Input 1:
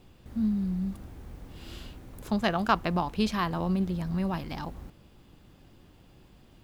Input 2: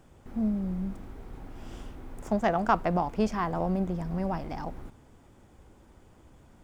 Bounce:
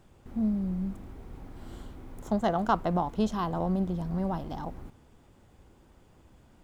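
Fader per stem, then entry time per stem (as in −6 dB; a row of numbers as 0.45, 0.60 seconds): −10.0, −3.0 decibels; 0.00, 0.00 seconds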